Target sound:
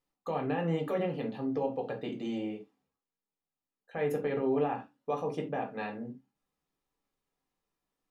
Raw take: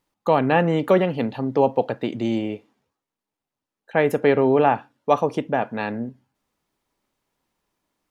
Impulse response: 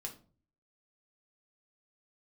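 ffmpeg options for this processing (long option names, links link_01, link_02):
-filter_complex "[0:a]alimiter=limit=-12.5dB:level=0:latency=1:release=42[link_01];[1:a]atrim=start_sample=2205,atrim=end_sample=3969[link_02];[link_01][link_02]afir=irnorm=-1:irlink=0,volume=-8dB"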